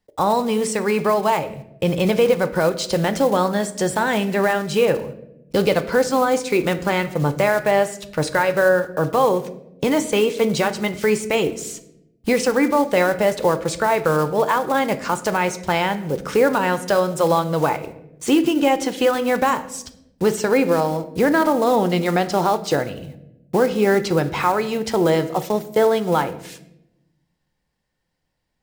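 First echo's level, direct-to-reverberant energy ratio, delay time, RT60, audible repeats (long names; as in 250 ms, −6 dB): no echo audible, 10.0 dB, no echo audible, 0.85 s, no echo audible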